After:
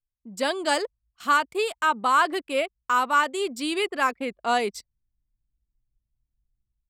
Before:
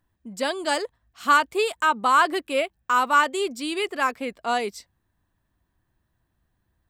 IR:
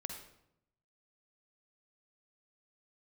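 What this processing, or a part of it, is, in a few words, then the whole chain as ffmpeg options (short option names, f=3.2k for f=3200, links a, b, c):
voice memo with heavy noise removal: -af "anlmdn=0.1,dynaudnorm=f=130:g=5:m=13.5dB,volume=-9dB"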